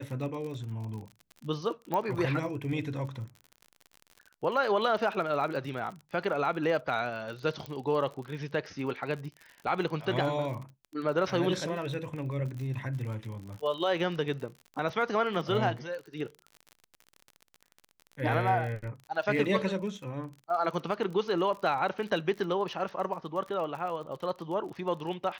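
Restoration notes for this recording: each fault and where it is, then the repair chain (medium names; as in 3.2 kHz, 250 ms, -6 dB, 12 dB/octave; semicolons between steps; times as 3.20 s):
crackle 42 per s -38 dBFS
1.94 s: pop -18 dBFS
7.66 s: pop -24 dBFS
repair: de-click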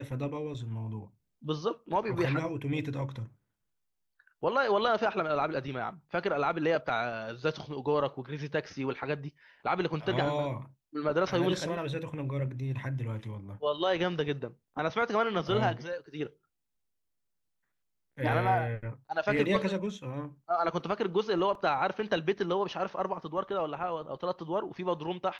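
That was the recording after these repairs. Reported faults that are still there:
1.94 s: pop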